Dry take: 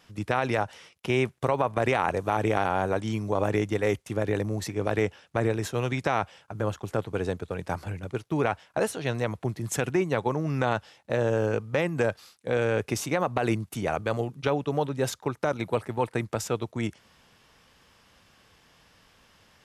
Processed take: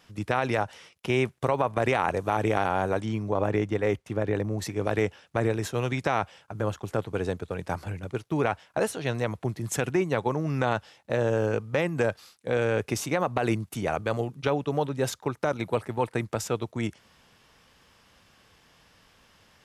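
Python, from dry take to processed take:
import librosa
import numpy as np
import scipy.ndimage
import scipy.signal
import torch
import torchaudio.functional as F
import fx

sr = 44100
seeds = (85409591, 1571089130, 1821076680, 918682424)

y = fx.high_shelf(x, sr, hz=4500.0, db=-11.0, at=(3.05, 4.59))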